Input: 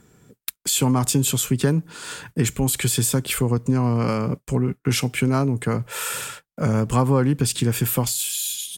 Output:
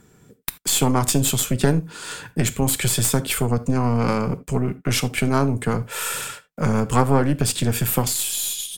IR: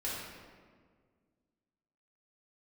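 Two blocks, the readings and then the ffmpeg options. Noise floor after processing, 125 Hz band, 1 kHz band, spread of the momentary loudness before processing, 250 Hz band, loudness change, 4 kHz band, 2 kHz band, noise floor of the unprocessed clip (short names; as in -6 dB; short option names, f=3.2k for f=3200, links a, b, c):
-56 dBFS, -0.5 dB, +3.5 dB, 8 LU, 0.0 dB, +0.5 dB, +1.5 dB, +2.0 dB, -71 dBFS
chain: -filter_complex "[0:a]aeval=exprs='0.447*(cos(1*acos(clip(val(0)/0.447,-1,1)))-cos(1*PI/2))+0.178*(cos(2*acos(clip(val(0)/0.447,-1,1)))-cos(2*PI/2))':c=same,asplit=2[a][b];[1:a]atrim=start_sample=2205,atrim=end_sample=3969[c];[b][c]afir=irnorm=-1:irlink=0,volume=-13.5dB[d];[a][d]amix=inputs=2:normalize=0"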